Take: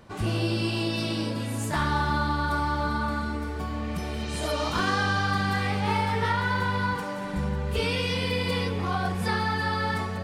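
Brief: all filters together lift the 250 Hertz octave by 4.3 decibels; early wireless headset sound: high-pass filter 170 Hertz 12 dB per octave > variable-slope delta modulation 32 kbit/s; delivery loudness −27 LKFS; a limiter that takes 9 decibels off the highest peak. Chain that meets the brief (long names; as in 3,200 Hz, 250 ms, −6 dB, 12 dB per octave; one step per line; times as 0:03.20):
parametric band 250 Hz +7.5 dB
brickwall limiter −20 dBFS
high-pass filter 170 Hz 12 dB per octave
variable-slope delta modulation 32 kbit/s
level +3.5 dB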